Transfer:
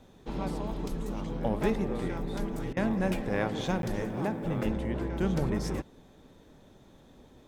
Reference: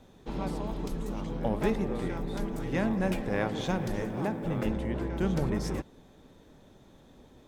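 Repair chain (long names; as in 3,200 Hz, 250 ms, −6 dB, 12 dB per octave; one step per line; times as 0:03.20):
repair the gap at 0:03.82, 12 ms
repair the gap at 0:02.73, 37 ms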